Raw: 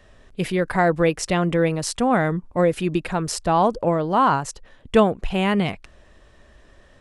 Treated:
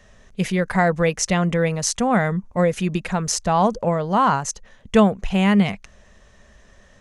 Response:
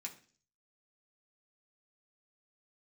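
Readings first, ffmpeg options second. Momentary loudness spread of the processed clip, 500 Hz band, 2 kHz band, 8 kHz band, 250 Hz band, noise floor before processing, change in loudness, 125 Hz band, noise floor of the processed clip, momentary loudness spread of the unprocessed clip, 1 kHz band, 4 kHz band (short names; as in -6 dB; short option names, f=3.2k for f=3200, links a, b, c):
7 LU, -1.0 dB, +1.5 dB, +6.5 dB, +2.5 dB, -53 dBFS, +1.0 dB, +2.5 dB, -52 dBFS, 7 LU, 0.0 dB, +1.5 dB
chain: -af "equalizer=f=200:t=o:w=0.33:g=7,equalizer=f=315:t=o:w=0.33:g=-10,equalizer=f=2k:t=o:w=0.33:g=3,equalizer=f=6.3k:t=o:w=0.33:g=11"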